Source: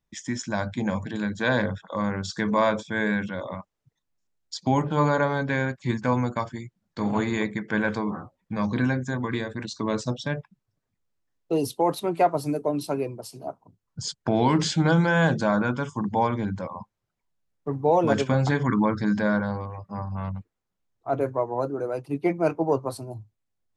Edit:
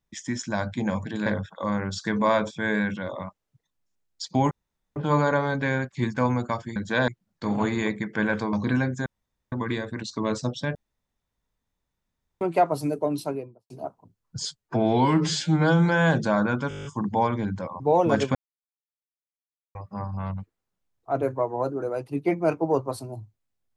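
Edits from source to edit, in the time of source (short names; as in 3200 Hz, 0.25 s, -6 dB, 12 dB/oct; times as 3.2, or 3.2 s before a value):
1.26–1.58 move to 6.63
4.83 insert room tone 0.45 s
8.08–8.62 cut
9.15 insert room tone 0.46 s
10.38–12.04 room tone
12.76–13.33 studio fade out
14.08–15.02 stretch 1.5×
15.85 stutter 0.02 s, 9 plays
16.8–17.78 cut
18.33–19.73 mute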